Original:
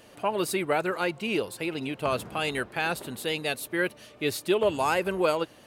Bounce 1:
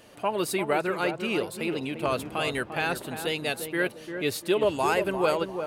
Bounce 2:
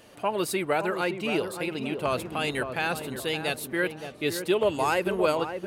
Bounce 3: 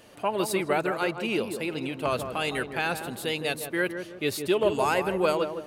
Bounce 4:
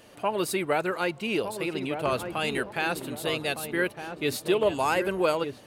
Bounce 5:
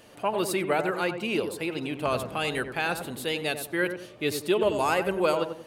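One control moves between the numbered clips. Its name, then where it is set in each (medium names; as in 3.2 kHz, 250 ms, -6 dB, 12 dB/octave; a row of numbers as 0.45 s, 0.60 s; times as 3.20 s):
filtered feedback delay, time: 347 ms, 569 ms, 160 ms, 1209 ms, 92 ms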